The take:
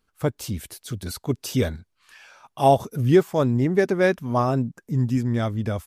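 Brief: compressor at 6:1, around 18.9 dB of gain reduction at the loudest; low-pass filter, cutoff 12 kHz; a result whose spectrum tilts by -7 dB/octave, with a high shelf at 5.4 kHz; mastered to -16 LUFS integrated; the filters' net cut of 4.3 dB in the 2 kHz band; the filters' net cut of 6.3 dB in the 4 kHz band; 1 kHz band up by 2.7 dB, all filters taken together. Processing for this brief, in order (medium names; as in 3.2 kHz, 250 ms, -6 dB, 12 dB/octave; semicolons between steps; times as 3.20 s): low-pass 12 kHz; peaking EQ 1 kHz +5.5 dB; peaking EQ 2 kHz -6.5 dB; peaking EQ 4 kHz -4.5 dB; treble shelf 5.4 kHz -4.5 dB; compression 6:1, threshold -31 dBFS; trim +19.5 dB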